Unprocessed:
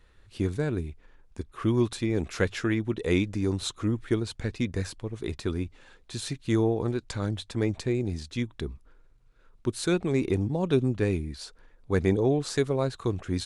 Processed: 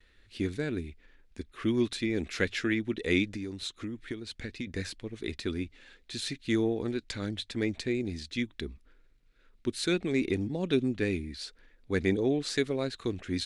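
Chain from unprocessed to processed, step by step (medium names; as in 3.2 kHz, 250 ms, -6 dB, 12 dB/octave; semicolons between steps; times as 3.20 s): gate with hold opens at -54 dBFS; graphic EQ 125/250/1000/2000/4000 Hz -6/+5/-7/+8/+6 dB; 3.25–4.67 s: compression 6:1, threshold -30 dBFS, peak gain reduction 11.5 dB; trim -4.5 dB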